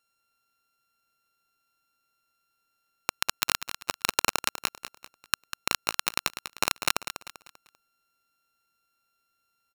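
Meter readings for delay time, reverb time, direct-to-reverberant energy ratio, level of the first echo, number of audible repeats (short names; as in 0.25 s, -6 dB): 0.196 s, none, none, -10.5 dB, 3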